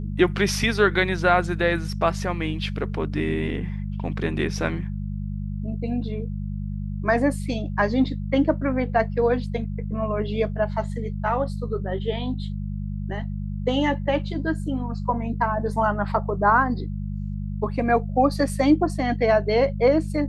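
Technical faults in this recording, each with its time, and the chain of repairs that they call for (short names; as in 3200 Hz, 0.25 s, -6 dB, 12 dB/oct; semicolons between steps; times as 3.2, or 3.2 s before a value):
hum 50 Hz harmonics 4 -29 dBFS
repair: de-hum 50 Hz, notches 4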